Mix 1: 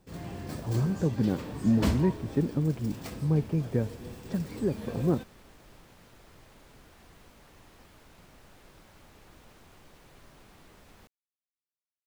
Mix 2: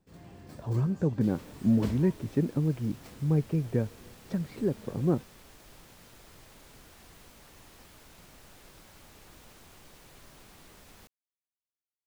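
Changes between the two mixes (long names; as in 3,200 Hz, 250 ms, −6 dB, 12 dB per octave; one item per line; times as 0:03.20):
first sound −10.5 dB
second sound: add high-shelf EQ 3,700 Hz +8 dB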